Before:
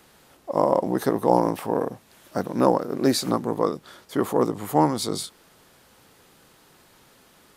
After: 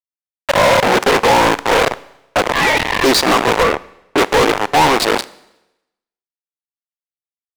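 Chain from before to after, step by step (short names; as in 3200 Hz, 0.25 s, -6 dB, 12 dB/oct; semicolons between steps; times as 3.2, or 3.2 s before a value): Wiener smoothing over 25 samples; 0.8–1.31 notch comb 320 Hz; sample gate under -30 dBFS; weighting filter A; overdrive pedal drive 39 dB, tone 6800 Hz, clips at -5.5 dBFS; Schroeder reverb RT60 0.92 s, combs from 31 ms, DRR 19 dB; 2.53–3.04 ring modulator 1400 Hz; 3.63–4.18 high shelf 2900 Hz -10 dB; gain +1.5 dB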